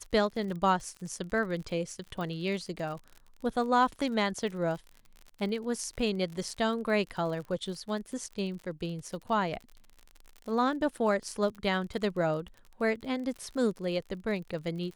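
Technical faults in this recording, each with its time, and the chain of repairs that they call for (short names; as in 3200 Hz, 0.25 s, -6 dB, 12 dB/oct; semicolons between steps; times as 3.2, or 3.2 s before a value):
crackle 48/s -39 dBFS
2.21 pop -26 dBFS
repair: de-click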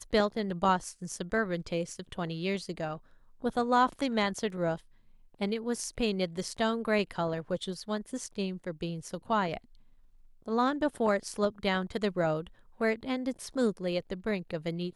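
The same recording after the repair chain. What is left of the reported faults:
none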